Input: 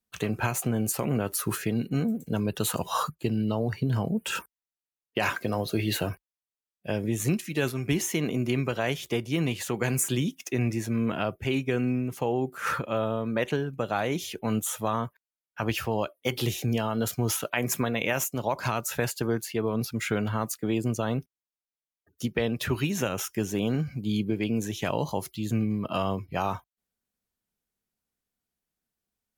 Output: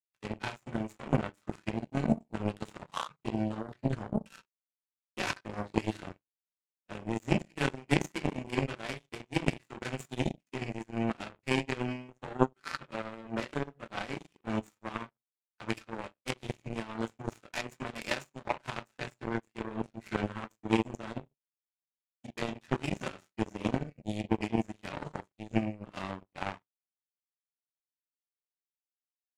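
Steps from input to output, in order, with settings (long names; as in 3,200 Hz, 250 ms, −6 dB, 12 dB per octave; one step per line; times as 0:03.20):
running median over 9 samples
high-shelf EQ 4,000 Hz +4 dB
convolution reverb RT60 0.40 s, pre-delay 3 ms, DRR −8 dB
downsampling to 22,050 Hz
power curve on the samples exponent 3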